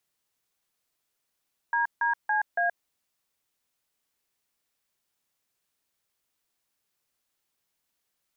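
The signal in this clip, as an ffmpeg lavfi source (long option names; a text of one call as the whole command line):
ffmpeg -f lavfi -i "aevalsrc='0.0562*clip(min(mod(t,0.281),0.125-mod(t,0.281))/0.002,0,1)*(eq(floor(t/0.281),0)*(sin(2*PI*941*mod(t,0.281))+sin(2*PI*1633*mod(t,0.281)))+eq(floor(t/0.281),1)*(sin(2*PI*941*mod(t,0.281))+sin(2*PI*1633*mod(t,0.281)))+eq(floor(t/0.281),2)*(sin(2*PI*852*mod(t,0.281))+sin(2*PI*1633*mod(t,0.281)))+eq(floor(t/0.281),3)*(sin(2*PI*697*mod(t,0.281))+sin(2*PI*1633*mod(t,0.281))))':duration=1.124:sample_rate=44100" out.wav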